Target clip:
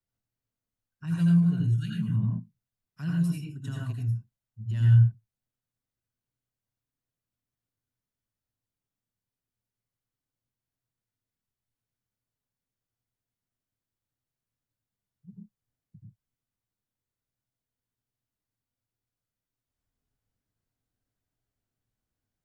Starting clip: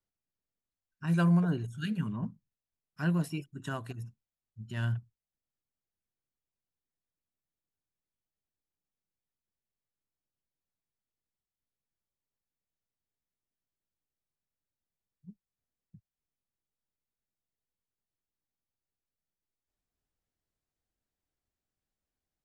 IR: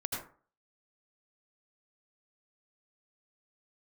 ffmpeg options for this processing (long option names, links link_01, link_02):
-filter_complex "[0:a]acrossover=split=190|2400[link_01][link_02][link_03];[link_02]acompressor=threshold=-48dB:ratio=6[link_04];[link_01][link_04][link_03]amix=inputs=3:normalize=0,equalizer=frequency=110:width_type=o:width=1.7:gain=7[link_05];[1:a]atrim=start_sample=2205,afade=type=out:start_time=0.2:duration=0.01,atrim=end_sample=9261[link_06];[link_05][link_06]afir=irnorm=-1:irlink=0,volume=-1.5dB"